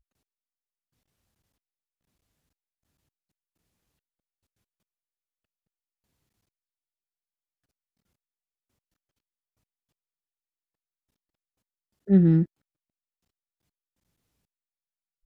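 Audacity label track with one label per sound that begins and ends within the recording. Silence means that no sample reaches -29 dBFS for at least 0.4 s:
12.090000	12.440000	sound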